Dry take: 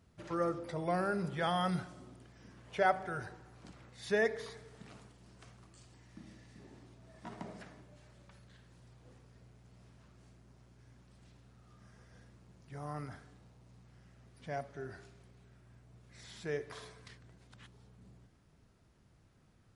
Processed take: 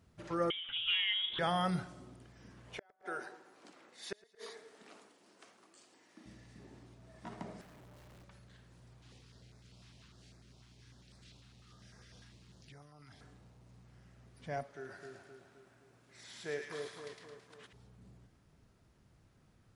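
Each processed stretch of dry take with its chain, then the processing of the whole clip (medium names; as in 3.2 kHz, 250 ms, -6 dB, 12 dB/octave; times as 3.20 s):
0.50–1.39 s: frequency inversion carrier 3.5 kHz + loudspeaker Doppler distortion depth 0.21 ms
2.78–6.26 s: high-pass 270 Hz 24 dB/octave + inverted gate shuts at -29 dBFS, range -40 dB + feedback delay 111 ms, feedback 56%, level -23 dB
7.61–8.24 s: one-bit comparator + treble shelf 2.4 kHz -8 dB
9.02–13.21 s: peaking EQ 3.8 kHz +12.5 dB 1.9 oct + compression 16:1, threshold -51 dBFS + step-sequenced notch 10 Hz 510–3000 Hz
14.63–17.73 s: high-pass 380 Hz 6 dB/octave + two-band feedback delay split 1.4 kHz, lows 260 ms, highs 109 ms, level -3 dB
whole clip: none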